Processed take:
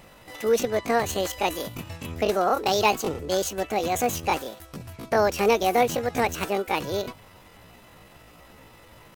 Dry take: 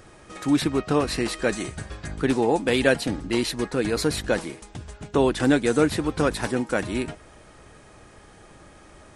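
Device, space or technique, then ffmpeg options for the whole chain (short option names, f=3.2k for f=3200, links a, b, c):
chipmunk voice: -af "asetrate=70004,aresample=44100,atempo=0.629961,volume=-1dB"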